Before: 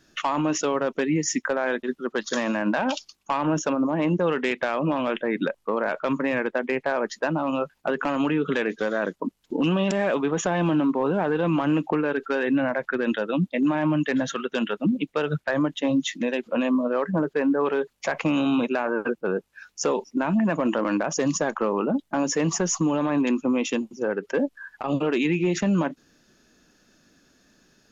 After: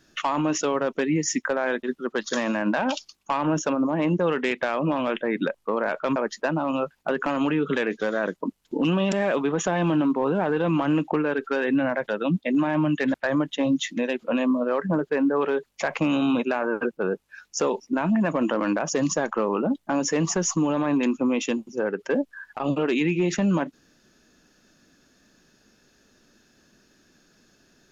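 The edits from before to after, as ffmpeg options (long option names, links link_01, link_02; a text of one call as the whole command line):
ffmpeg -i in.wav -filter_complex "[0:a]asplit=4[link_01][link_02][link_03][link_04];[link_01]atrim=end=6.162[link_05];[link_02]atrim=start=6.948:end=12.872[link_06];[link_03]atrim=start=13.158:end=14.222[link_07];[link_04]atrim=start=15.378[link_08];[link_05][link_06]acrossfade=duration=0.004:curve1=hsin:curve2=hsin[link_09];[link_09][link_07]acrossfade=duration=0.004:curve1=hsin:curve2=hsin[link_10];[link_10][link_08]acrossfade=duration=0.004:curve1=hsin:curve2=hsin" out.wav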